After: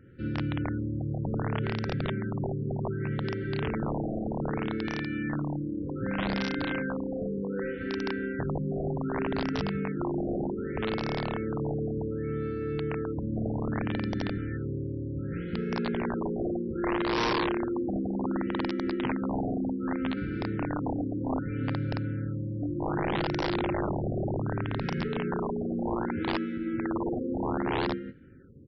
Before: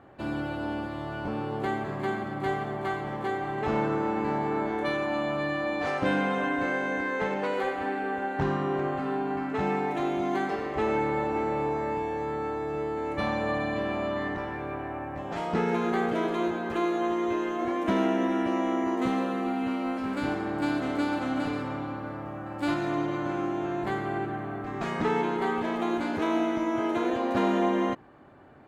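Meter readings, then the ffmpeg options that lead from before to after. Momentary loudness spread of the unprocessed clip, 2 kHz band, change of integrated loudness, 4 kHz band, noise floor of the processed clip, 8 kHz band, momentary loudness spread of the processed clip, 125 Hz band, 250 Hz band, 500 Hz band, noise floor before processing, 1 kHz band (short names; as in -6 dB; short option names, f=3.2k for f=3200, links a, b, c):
6 LU, -4.5 dB, -2.0 dB, +1.0 dB, -35 dBFS, n/a, 4 LU, +6.0 dB, -1.0 dB, -3.5 dB, -37 dBFS, -7.0 dB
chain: -filter_complex "[0:a]afftfilt=real='re*(1-between(b*sr/4096,550,1300))':imag='im*(1-between(b*sr/4096,550,1300))':win_size=4096:overlap=0.75,acrossover=split=2900[a][b];[b]acompressor=threshold=-55dB:ratio=4:attack=1:release=60[c];[a][c]amix=inputs=2:normalize=0,bass=f=250:g=11,treble=f=4k:g=-8,alimiter=limit=-19dB:level=0:latency=1:release=285,aecho=1:1:46|89|109|163|187:0.422|0.168|0.126|0.531|0.158,aresample=16000,aeval=exprs='(mod(7.5*val(0)+1,2)-1)/7.5':c=same,aresample=44100,afftfilt=real='re*lt(b*sr/1024,750*pow(5900/750,0.5+0.5*sin(2*PI*0.65*pts/sr)))':imag='im*lt(b*sr/1024,750*pow(5900/750,0.5+0.5*sin(2*PI*0.65*pts/sr)))':win_size=1024:overlap=0.75,volume=-5dB"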